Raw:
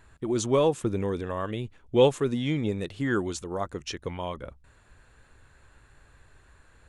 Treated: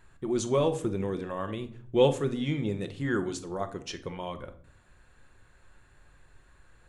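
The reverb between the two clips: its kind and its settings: simulated room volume 790 m³, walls furnished, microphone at 0.95 m; trim -3.5 dB

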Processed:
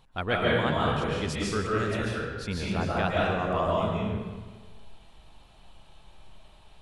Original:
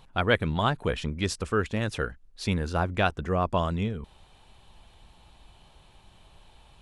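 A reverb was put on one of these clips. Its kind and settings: algorithmic reverb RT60 1.4 s, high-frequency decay 0.75×, pre-delay 100 ms, DRR -5.5 dB; trim -6 dB

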